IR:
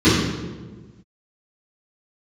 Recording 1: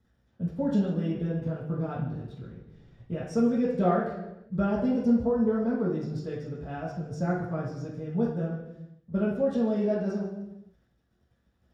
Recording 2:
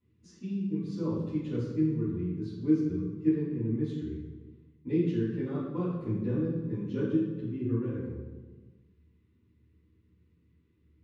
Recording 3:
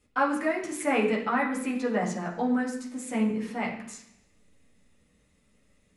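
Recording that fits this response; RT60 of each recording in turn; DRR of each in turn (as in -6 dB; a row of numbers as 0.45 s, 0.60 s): 2; no single decay rate, 1.4 s, 0.70 s; -7.5 dB, -15.5 dB, -3.5 dB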